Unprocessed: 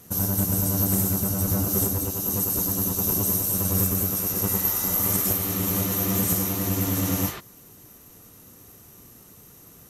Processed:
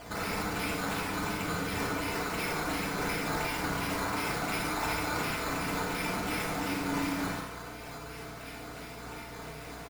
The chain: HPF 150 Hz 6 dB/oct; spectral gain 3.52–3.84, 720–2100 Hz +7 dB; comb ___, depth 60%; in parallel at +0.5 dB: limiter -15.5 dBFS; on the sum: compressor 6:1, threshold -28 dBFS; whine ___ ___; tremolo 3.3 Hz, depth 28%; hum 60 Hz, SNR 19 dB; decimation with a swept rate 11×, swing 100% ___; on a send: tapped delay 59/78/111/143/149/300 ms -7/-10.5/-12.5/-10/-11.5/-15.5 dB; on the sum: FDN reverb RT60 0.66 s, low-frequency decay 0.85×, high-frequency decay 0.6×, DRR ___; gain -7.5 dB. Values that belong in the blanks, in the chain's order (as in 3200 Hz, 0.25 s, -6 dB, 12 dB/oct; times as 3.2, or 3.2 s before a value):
4.7 ms, 680 Hz, -40 dBFS, 2.8 Hz, -3 dB